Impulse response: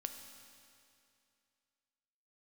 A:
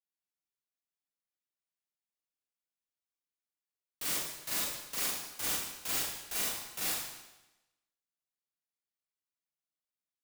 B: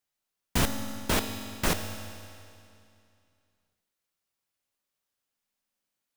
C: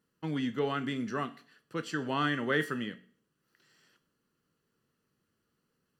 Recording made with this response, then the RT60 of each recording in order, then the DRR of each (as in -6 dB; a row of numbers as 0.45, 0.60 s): B; 1.0, 2.5, 0.45 s; -6.5, 6.0, 9.5 dB